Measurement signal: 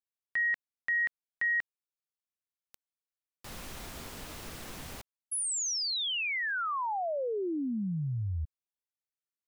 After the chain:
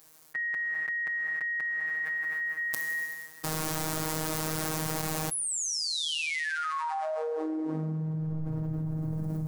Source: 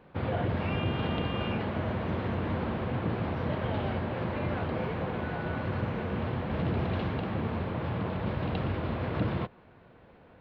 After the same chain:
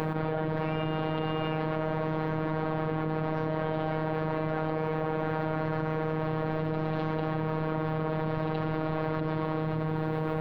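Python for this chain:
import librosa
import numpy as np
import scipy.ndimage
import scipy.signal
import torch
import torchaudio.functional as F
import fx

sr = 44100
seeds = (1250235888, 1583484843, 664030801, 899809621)

y = fx.rev_plate(x, sr, seeds[0], rt60_s=2.9, hf_ratio=1.0, predelay_ms=0, drr_db=10.0)
y = fx.dynamic_eq(y, sr, hz=150.0, q=0.96, threshold_db=-45.0, ratio=4.0, max_db=-6)
y = scipy.signal.sosfilt(scipy.signal.butter(2, 53.0, 'highpass', fs=sr, output='sos'), y)
y = fx.rider(y, sr, range_db=10, speed_s=0.5)
y = fx.peak_eq(y, sr, hz=2900.0, db=-8.5, octaves=1.3)
y = fx.robotise(y, sr, hz=157.0)
y = fx.env_flatten(y, sr, amount_pct=100)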